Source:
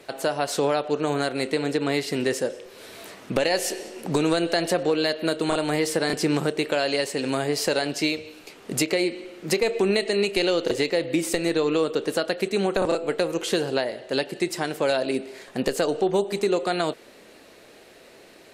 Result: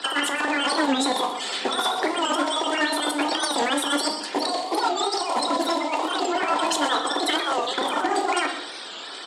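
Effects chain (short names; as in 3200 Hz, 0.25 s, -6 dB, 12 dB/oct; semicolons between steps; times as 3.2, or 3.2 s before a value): bin magnitudes rounded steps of 30 dB; EQ curve 820 Hz 0 dB, 1500 Hz +9 dB, 2700 Hz +1 dB; limiter -13 dBFS, peak gain reduction 6.5 dB; negative-ratio compressor -28 dBFS, ratio -0.5; overloaded stage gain 24 dB; outdoor echo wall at 42 m, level -11 dB; reverb RT60 1.2 s, pre-delay 6 ms, DRR 5 dB; speed mistake 7.5 ips tape played at 15 ips; speaker cabinet 230–8300 Hz, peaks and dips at 630 Hz -5 dB, 1100 Hz -4 dB, 1800 Hz +4 dB, 2600 Hz -7 dB, 6000 Hz -7 dB; record warp 45 rpm, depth 160 cents; gain +7.5 dB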